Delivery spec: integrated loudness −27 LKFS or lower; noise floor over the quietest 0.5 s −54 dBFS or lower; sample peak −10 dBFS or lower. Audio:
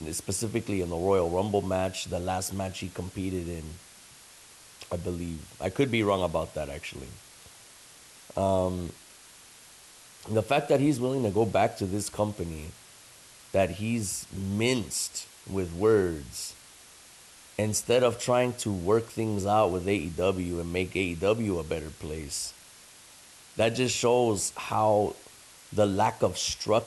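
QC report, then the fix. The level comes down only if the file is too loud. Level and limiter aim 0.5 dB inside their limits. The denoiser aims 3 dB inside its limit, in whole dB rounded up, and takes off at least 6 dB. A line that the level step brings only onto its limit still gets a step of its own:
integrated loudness −28.5 LKFS: in spec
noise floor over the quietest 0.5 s −52 dBFS: out of spec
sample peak −12.0 dBFS: in spec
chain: broadband denoise 6 dB, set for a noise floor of −52 dBFS

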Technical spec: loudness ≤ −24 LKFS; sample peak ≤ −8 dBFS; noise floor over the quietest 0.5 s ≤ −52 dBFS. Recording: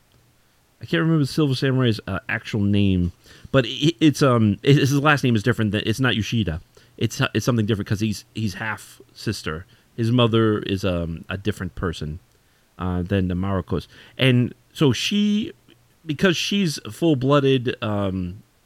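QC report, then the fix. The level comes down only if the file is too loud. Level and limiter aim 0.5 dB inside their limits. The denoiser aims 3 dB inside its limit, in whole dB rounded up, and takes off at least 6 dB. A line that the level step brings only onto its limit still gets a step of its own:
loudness −21.5 LKFS: out of spec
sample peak −2.5 dBFS: out of spec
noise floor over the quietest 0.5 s −60 dBFS: in spec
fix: level −3 dB
brickwall limiter −8.5 dBFS

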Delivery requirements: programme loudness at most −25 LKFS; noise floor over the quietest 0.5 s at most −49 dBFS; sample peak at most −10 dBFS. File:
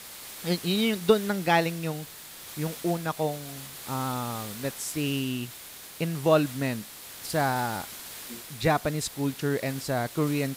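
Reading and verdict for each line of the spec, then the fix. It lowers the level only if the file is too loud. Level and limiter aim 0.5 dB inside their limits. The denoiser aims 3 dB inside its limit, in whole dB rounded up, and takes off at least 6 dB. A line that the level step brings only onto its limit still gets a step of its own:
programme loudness −28.5 LKFS: in spec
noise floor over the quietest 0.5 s −44 dBFS: out of spec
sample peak −6.0 dBFS: out of spec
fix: broadband denoise 8 dB, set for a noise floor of −44 dBFS
brickwall limiter −10.5 dBFS

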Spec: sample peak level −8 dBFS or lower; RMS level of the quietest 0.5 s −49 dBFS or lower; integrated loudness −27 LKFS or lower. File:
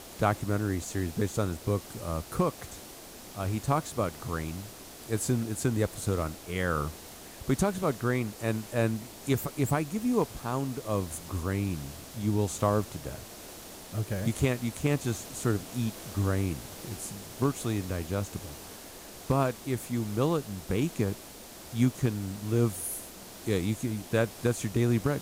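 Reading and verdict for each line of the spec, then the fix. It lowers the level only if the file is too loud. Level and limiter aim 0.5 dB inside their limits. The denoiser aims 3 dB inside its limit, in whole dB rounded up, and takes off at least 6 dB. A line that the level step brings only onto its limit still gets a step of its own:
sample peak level −12.0 dBFS: in spec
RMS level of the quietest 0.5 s −47 dBFS: out of spec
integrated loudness −31.0 LKFS: in spec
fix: broadband denoise 6 dB, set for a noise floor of −47 dBFS

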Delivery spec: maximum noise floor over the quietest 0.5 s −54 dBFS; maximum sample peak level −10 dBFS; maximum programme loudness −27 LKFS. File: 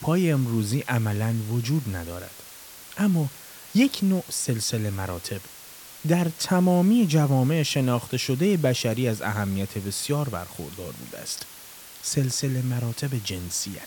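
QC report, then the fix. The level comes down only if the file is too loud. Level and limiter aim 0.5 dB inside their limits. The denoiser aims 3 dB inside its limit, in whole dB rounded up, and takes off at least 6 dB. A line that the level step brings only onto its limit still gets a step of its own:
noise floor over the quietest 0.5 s −44 dBFS: out of spec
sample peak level −9.0 dBFS: out of spec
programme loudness −25.0 LKFS: out of spec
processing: broadband denoise 11 dB, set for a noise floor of −44 dBFS
level −2.5 dB

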